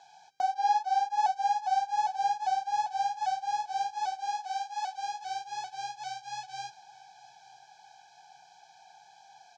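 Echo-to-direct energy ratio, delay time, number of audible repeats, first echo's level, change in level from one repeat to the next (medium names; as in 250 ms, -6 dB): -19.0 dB, 897 ms, 3, -20.5 dB, -5.5 dB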